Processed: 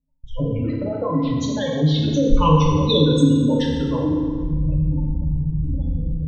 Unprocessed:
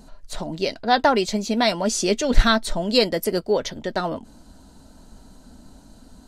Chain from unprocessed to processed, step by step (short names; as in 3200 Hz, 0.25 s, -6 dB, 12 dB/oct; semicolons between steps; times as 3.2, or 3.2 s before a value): repeated pitch sweeps -10 st, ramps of 0.706 s; Doppler pass-by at 2.91, 7 m/s, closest 2.6 m; recorder AGC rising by 54 dB/s; spectral gate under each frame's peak -15 dB strong; bell 64 Hz +14.5 dB 1.3 oct; low-pass opened by the level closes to 2700 Hz, open at -17 dBFS; ripple EQ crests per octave 1.1, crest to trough 14 dB; gate -39 dBFS, range -25 dB; FDN reverb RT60 1.7 s, low-frequency decay 1.05×, high-frequency decay 0.8×, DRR -3 dB; in parallel at +2 dB: limiter -22.5 dBFS, peak gain reduction 21 dB; on the sum: gain -2.5 dB